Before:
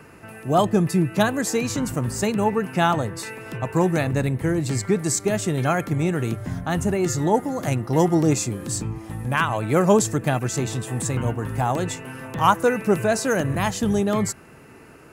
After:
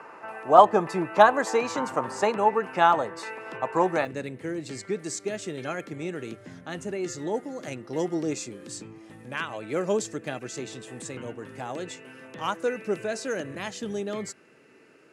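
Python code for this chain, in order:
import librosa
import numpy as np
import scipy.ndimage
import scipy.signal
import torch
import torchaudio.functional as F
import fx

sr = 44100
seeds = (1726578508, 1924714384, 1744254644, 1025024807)

y = fx.bandpass_edges(x, sr, low_hz=500.0, high_hz=7200.0)
y = fx.tilt_eq(y, sr, slope=-2.0)
y = fx.notch(y, sr, hz=700.0, q=20.0)
y = fx.peak_eq(y, sr, hz=940.0, db=fx.steps((0.0, 11.5), (2.38, 4.5), (4.05, -12.5)), octaves=1.4)
y = F.gain(torch.from_numpy(y), -1.5).numpy()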